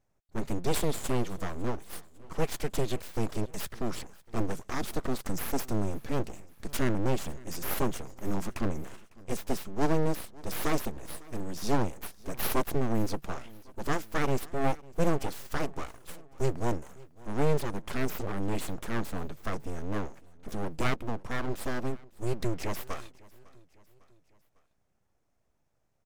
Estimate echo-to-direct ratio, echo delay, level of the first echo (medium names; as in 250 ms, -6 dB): -21.5 dB, 552 ms, -23.0 dB